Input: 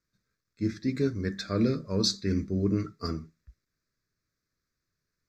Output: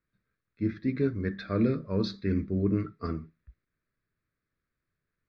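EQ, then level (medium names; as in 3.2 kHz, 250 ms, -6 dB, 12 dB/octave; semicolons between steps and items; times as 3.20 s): low-pass 3.2 kHz 24 dB/octave; 0.0 dB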